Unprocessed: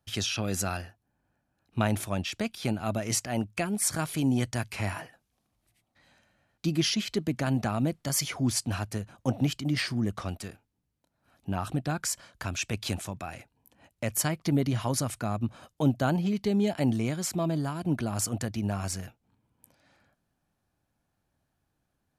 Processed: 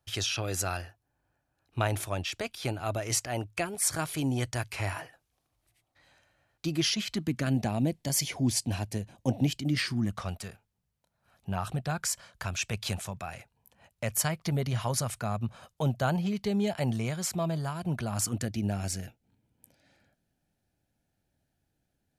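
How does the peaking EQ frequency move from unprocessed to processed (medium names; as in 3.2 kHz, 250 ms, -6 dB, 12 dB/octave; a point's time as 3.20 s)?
peaking EQ -14.5 dB 0.43 oct
6.86 s 210 Hz
7.62 s 1.3 kHz
9.54 s 1.3 kHz
10.26 s 290 Hz
18.07 s 290 Hz
18.49 s 1.1 kHz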